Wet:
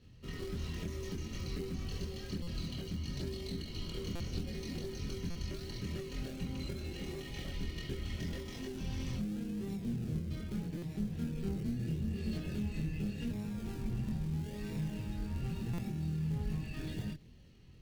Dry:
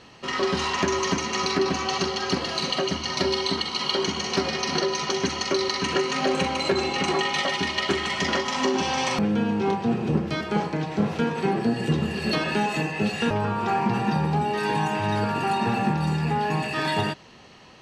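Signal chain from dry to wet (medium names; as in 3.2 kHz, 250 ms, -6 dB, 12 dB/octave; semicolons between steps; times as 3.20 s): treble shelf 8 kHz -9.5 dB; in parallel at -3 dB: decimation with a swept rate 40×, swing 60% 0.8 Hz; on the sum: compression 3:1, threshold -23 dBFS, peak gain reduction 8 dB; chorus voices 2, 0.61 Hz, delay 24 ms, depth 1.4 ms; one-sided clip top -25 dBFS; amplifier tone stack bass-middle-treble 10-0-1; buffer glitch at 2.42/4.15/5.30/10.77/15.73 s, samples 256, times 8; trim +8 dB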